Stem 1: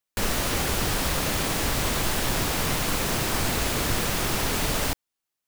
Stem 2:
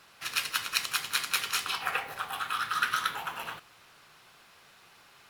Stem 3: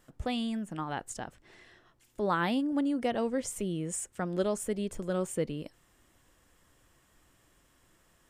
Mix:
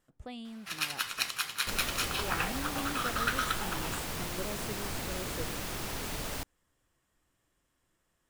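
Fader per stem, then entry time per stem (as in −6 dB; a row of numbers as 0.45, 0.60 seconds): −11.5, −3.0, −11.0 decibels; 1.50, 0.45, 0.00 seconds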